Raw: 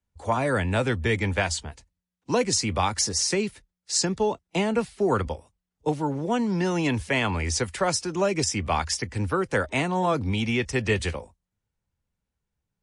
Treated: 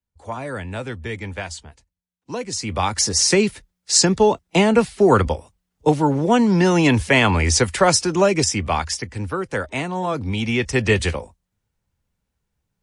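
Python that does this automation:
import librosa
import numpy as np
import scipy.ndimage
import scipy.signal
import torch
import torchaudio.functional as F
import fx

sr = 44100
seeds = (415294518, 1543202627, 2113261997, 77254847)

y = fx.gain(x, sr, db=fx.line((2.47, -5.0), (2.75, 2.0), (3.34, 9.0), (8.07, 9.0), (9.19, 0.0), (10.1, 0.0), (10.8, 6.5)))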